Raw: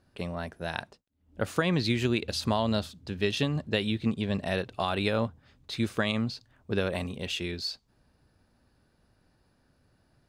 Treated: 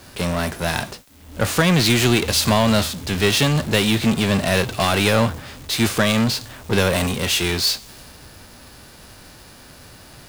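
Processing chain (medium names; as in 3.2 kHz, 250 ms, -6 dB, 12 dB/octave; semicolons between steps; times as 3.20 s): formants flattened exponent 0.6; power-law waveshaper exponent 0.5; three bands expanded up and down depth 40%; trim +3.5 dB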